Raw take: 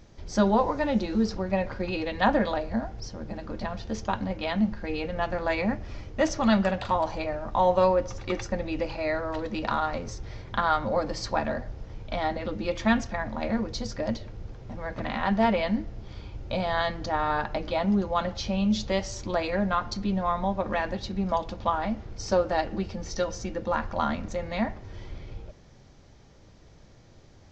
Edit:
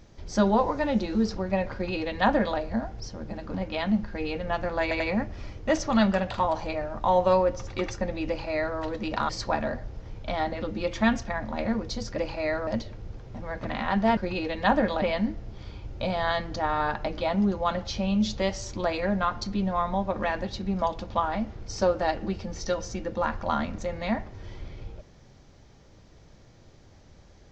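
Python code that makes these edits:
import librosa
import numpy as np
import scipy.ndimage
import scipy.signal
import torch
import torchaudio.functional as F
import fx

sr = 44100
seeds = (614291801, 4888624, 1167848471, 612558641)

y = fx.edit(x, sr, fx.duplicate(start_s=1.74, length_s=0.85, to_s=15.52),
    fx.cut(start_s=3.54, length_s=0.69),
    fx.stutter(start_s=5.51, slice_s=0.09, count=3),
    fx.duplicate(start_s=8.79, length_s=0.49, to_s=14.02),
    fx.cut(start_s=9.8, length_s=1.33), tone=tone)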